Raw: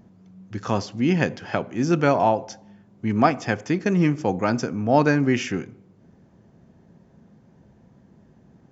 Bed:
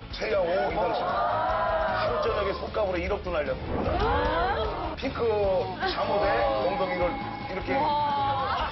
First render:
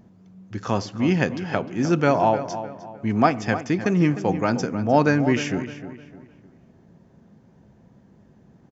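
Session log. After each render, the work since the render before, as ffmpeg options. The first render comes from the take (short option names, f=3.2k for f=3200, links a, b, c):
-filter_complex "[0:a]asplit=2[a][b];[b]adelay=305,lowpass=f=2.9k:p=1,volume=-11.5dB,asplit=2[c][d];[d]adelay=305,lowpass=f=2.9k:p=1,volume=0.37,asplit=2[e][f];[f]adelay=305,lowpass=f=2.9k:p=1,volume=0.37,asplit=2[g][h];[h]adelay=305,lowpass=f=2.9k:p=1,volume=0.37[i];[a][c][e][g][i]amix=inputs=5:normalize=0"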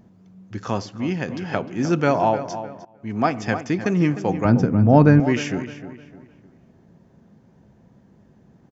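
-filter_complex "[0:a]asettb=1/sr,asplit=3[a][b][c];[a]atrim=end=4.454[d];[b]atrim=start=4.45:end=5.2,asetpts=PTS-STARTPTS,afade=t=in:d=0.004:c=qsin,afade=t=out:st=0.746:d=0.004:c=qsin,aemphasis=mode=reproduction:type=riaa[e];[c]atrim=start=5.196[f];[d][e]acrossfade=d=0.004:c1=hsin:c2=qsin[g];[g][f]acrossfade=d=0.004:c1=qsin:c2=hsin,asplit=3[h][i][j];[h]atrim=end=1.28,asetpts=PTS-STARTPTS,afade=t=out:st=0.56:d=0.72:silence=0.473151[k];[i]atrim=start=1.28:end=2.85,asetpts=PTS-STARTPTS,afade=t=in:d=0.004:c=hsin:silence=0.473151,afade=t=out:st=1.566:d=0.004:c=hsin:silence=0.105925[l];[j]atrim=start=2.85,asetpts=PTS-STARTPTS,afade=t=in:d=0.55:silence=0.105925[m];[k][l][m]concat=n=3:v=0:a=1"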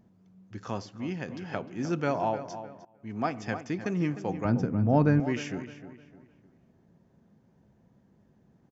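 -af "volume=-9.5dB"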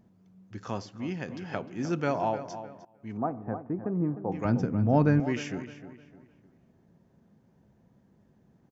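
-filter_complex "[0:a]asettb=1/sr,asplit=3[a][b][c];[a]atrim=end=3.174[d];[b]atrim=start=3.17:end=4.32,asetpts=PTS-STARTPTS,afade=t=in:d=0.004:c=qsin,afade=t=out:st=1.146:d=0.004:c=qsin,lowpass=f=1.1k:w=0.5412,lowpass=f=1.1k:w=1.3066[e];[c]atrim=start=4.316[f];[d][e]acrossfade=d=0.004:c1=hsin:c2=qsin[g];[g][f]acrossfade=d=0.004:c1=qsin:c2=hsin"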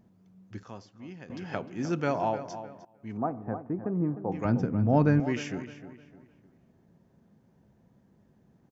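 -filter_complex "[0:a]asettb=1/sr,asplit=3[a][b][c];[a]atrim=end=4.464[d];[b]atrim=start=4.46:end=4.97,asetpts=PTS-STARTPTS,afade=t=in:d=0.004:c=qsin,afade=t=out:st=0.506:d=0.004:c=qsin,highshelf=f=5.1k:g=-6.5[e];[c]atrim=start=4.966[f];[d][e]acrossfade=d=0.004:c1=hsin:c2=qsin[g];[g][f]acrossfade=d=0.004:c1=qsin:c2=hsin,asplit=3[h][i][j];[h]atrim=end=0.632[k];[i]atrim=start=0.628:end=1.302,asetpts=PTS-STARTPTS,volume=-10dB[l];[j]atrim=start=1.298[m];[k][l]acrossfade=d=0.004:c1=hsin:c2=hsin[n];[n][m]acrossfade=d=0.004:c1=hsin:c2=hsin"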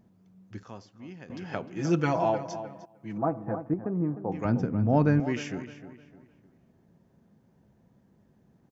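-filter_complex "[0:a]asettb=1/sr,asplit=3[a][b][c];[a]atrim=end=1.764[d];[b]atrim=start=1.76:end=3.74,asetpts=PTS-STARTPTS,afade=t=in:d=0.004:c=qsin,afade=t=out:st=1.976:d=0.004:c=qsin,aecho=1:1:6.1:1,atrim=end_sample=87318[e];[c]atrim=start=3.736[f];[d][e]acrossfade=d=0.004:c1=hsin:c2=qsin[g];[g][f]acrossfade=d=0.004:c1=qsin:c2=hsin"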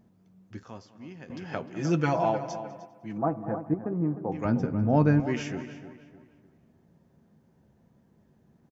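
-filter_complex "[0:a]asplit=2[a][b];[b]adelay=13,volume=-12.5dB[c];[a][c]amix=inputs=2:normalize=0,asplit=2[d][e];[e]adelay=200,lowpass=f=4.2k:p=1,volume=-17dB,asplit=2[f][g];[g]adelay=200,lowpass=f=4.2k:p=1,volume=0.44,asplit=2[h][i];[i]adelay=200,lowpass=f=4.2k:p=1,volume=0.44,asplit=2[j][k];[k]adelay=200,lowpass=f=4.2k:p=1,volume=0.44[l];[d][f][h][j][l]amix=inputs=5:normalize=0"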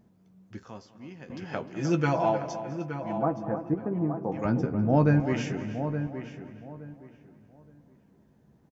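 -filter_complex "[0:a]asplit=2[a][b];[b]adelay=15,volume=-11.5dB[c];[a][c]amix=inputs=2:normalize=0,asplit=2[d][e];[e]adelay=870,lowpass=f=2k:p=1,volume=-9dB,asplit=2[f][g];[g]adelay=870,lowpass=f=2k:p=1,volume=0.24,asplit=2[h][i];[i]adelay=870,lowpass=f=2k:p=1,volume=0.24[j];[d][f][h][j]amix=inputs=4:normalize=0"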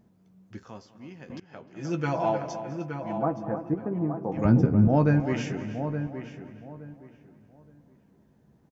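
-filter_complex "[0:a]asettb=1/sr,asplit=3[a][b][c];[a]atrim=end=4.374[d];[b]atrim=start=4.37:end=4.88,asetpts=PTS-STARTPTS,afade=t=in:d=0.004:c=qsin,afade=t=out:st=0.506:d=0.004:c=qsin,lowshelf=f=290:g=10.5[e];[c]atrim=start=4.876[f];[d][e]acrossfade=d=0.004:c1=hsin:c2=qsin[g];[g][f]acrossfade=d=0.004:c1=qsin:c2=hsin,asplit=2[h][i];[h]atrim=end=1.4,asetpts=PTS-STARTPTS,afade=t=out:st=1.396:d=0.004:c=hsin:silence=0.105925[j];[i]atrim=start=1.4,asetpts=PTS-STARTPTS,afade=t=in:d=0.96:silence=0.105925[k];[j][k]concat=n=2:v=0:a=1"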